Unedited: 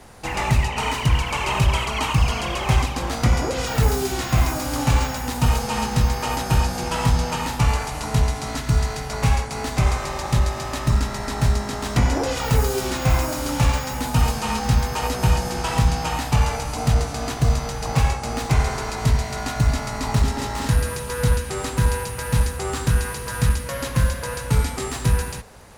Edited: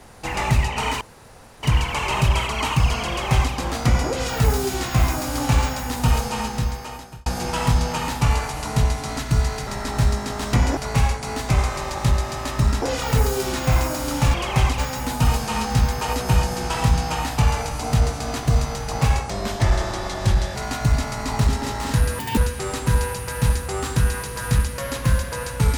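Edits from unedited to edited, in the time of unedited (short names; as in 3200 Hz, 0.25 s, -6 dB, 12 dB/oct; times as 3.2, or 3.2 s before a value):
1.01 insert room tone 0.62 s
2.47–2.91 copy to 13.72
5.55–6.64 fade out linear
11.1–12.2 move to 9.05
18.24–19.31 speed 85%
20.94–21.28 speed 185%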